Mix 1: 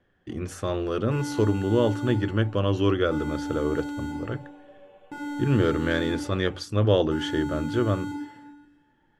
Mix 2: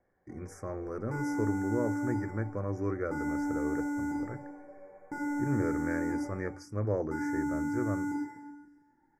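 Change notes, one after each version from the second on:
speech −10.0 dB
master: add Chebyshev band-stop filter 2,300–4,900 Hz, order 5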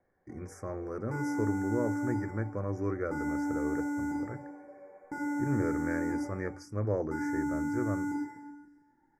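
first sound: add linear-phase brick-wall high-pass 190 Hz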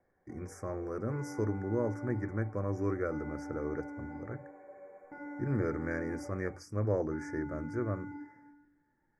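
second sound: add transistor ladder low-pass 3,300 Hz, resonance 65%

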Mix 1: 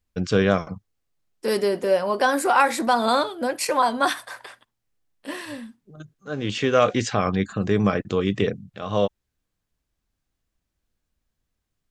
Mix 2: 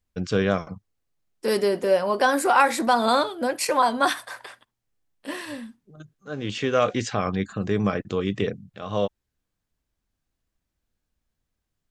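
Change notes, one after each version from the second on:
first voice −3.0 dB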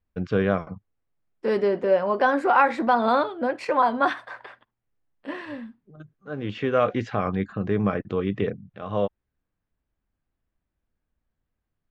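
master: add low-pass filter 2,200 Hz 12 dB per octave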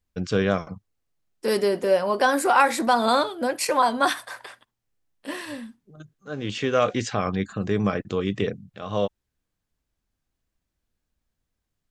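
master: remove low-pass filter 2,200 Hz 12 dB per octave

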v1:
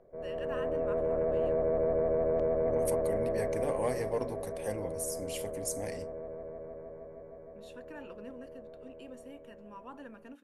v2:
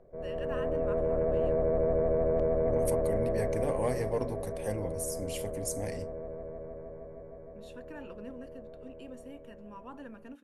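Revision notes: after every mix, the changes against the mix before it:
master: add low-shelf EQ 170 Hz +8.5 dB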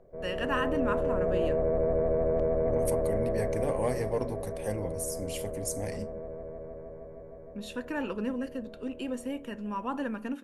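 first voice +12.0 dB
reverb: on, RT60 0.60 s

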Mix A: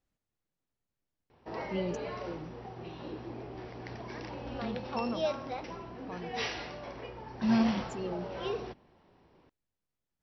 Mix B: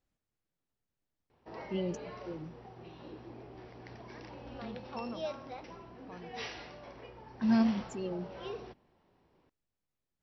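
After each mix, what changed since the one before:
background −6.5 dB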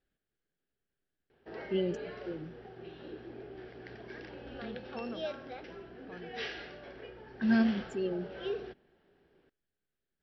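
master: add thirty-one-band graphic EQ 100 Hz −9 dB, 400 Hz +8 dB, 1,000 Hz −11 dB, 1,600 Hz +10 dB, 3,150 Hz +5 dB, 6,300 Hz −11 dB

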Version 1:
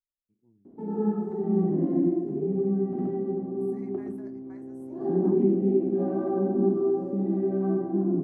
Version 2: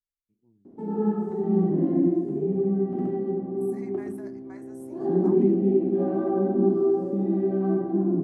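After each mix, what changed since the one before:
second voice +5.5 dB
background: send on
master: add high-shelf EQ 3,000 Hz +8 dB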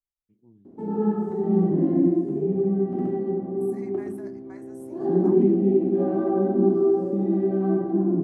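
first voice +9.0 dB
background: send +6.0 dB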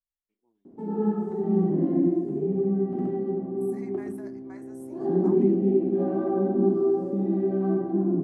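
first voice: add high-pass filter 790 Hz 12 dB per octave
background: send −10.0 dB

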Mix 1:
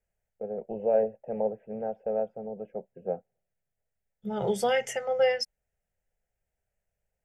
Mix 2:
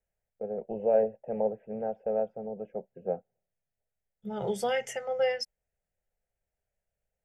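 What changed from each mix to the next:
second voice −3.5 dB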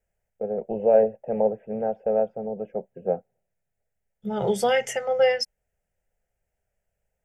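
first voice +6.5 dB
second voice +7.5 dB

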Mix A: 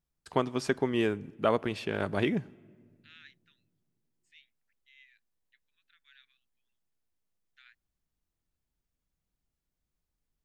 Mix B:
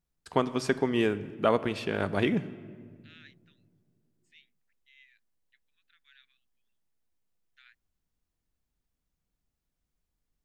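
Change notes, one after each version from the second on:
first voice: send +11.5 dB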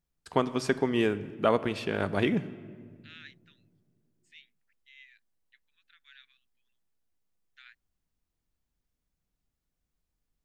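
second voice +5.0 dB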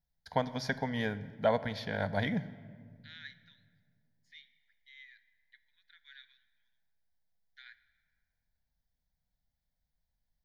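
second voice: send on
master: add phaser with its sweep stopped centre 1,800 Hz, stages 8

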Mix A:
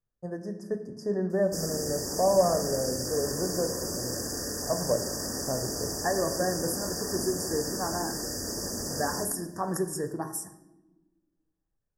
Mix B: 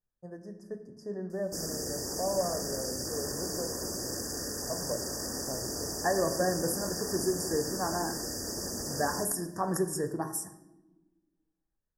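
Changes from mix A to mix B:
first voice −8.5 dB
background: send −7.0 dB

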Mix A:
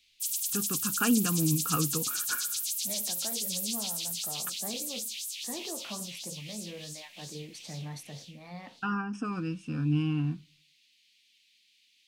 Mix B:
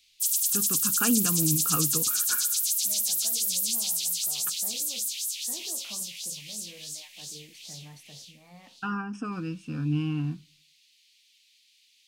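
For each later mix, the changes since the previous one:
second voice −7.5 dB
background: add bass and treble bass −7 dB, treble +7 dB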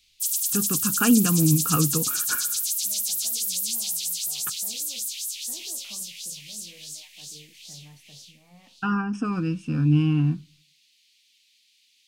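first voice +4.5 dB
second voice −5.0 dB
master: add low-shelf EQ 250 Hz +5.5 dB

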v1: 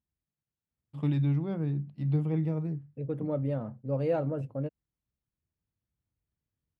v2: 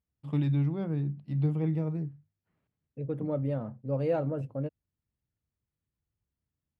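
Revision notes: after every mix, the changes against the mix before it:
first voice: entry −0.70 s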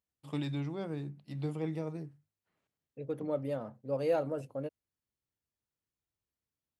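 master: add bass and treble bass −12 dB, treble +13 dB

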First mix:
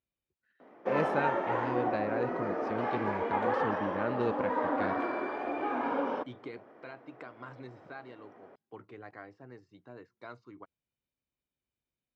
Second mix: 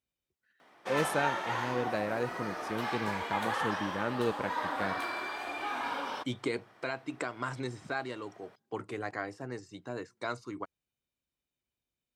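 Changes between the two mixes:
second voice +9.5 dB
background: add octave-band graphic EQ 250/500/4,000 Hz −10/−10/+10 dB
master: remove high-frequency loss of the air 220 metres

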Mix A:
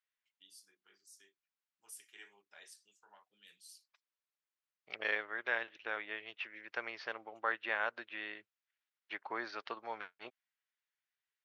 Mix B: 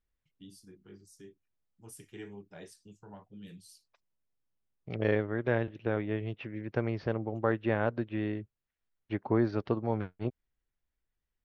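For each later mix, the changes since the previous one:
second voice −4.5 dB
master: remove high-pass filter 1,400 Hz 12 dB per octave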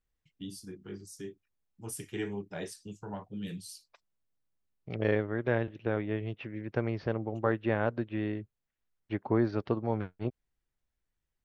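first voice +9.5 dB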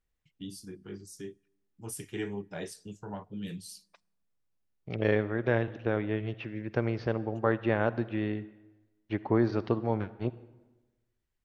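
second voice: remove high-frequency loss of the air 64 metres
reverb: on, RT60 1.2 s

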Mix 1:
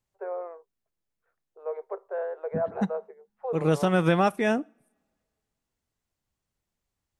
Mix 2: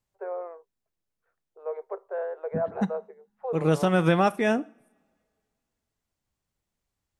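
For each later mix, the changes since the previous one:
second voice: send +7.0 dB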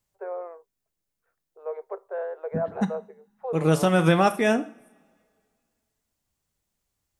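second voice: send +8.5 dB
master: add high-shelf EQ 5,900 Hz +8.5 dB

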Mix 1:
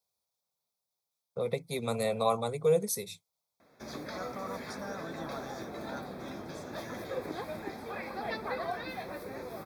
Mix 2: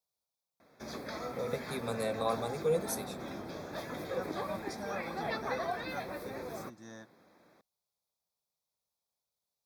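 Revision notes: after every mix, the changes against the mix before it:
first voice −4.5 dB
background: entry −3.00 s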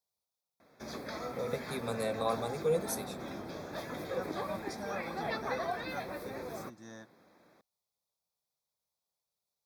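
nothing changed

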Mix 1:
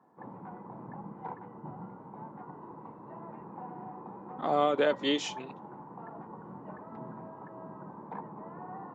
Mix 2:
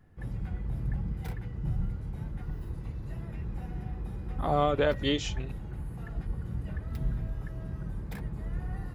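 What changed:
background: remove low-pass with resonance 970 Hz, resonance Q 6.4
master: remove high-pass filter 210 Hz 24 dB per octave

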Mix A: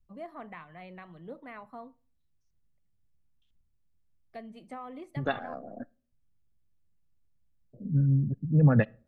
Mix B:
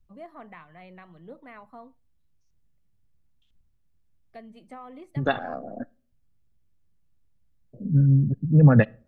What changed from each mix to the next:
first voice: send −7.5 dB
second voice +6.0 dB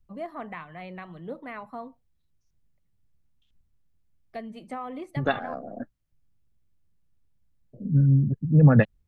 first voice +8.0 dB
reverb: off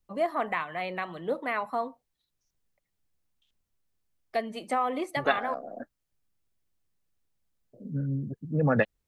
first voice +9.0 dB
master: add bass and treble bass −14 dB, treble +4 dB

